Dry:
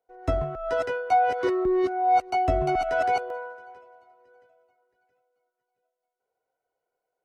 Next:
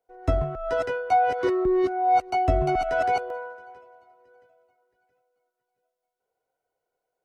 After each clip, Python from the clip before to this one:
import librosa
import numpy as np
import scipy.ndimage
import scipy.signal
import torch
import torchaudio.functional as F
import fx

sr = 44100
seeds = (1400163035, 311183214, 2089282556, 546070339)

y = fx.low_shelf(x, sr, hz=220.0, db=4.5)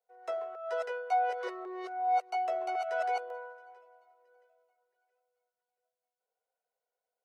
y = scipy.signal.sosfilt(scipy.signal.butter(8, 440.0, 'highpass', fs=sr, output='sos'), x)
y = y * librosa.db_to_amplitude(-8.0)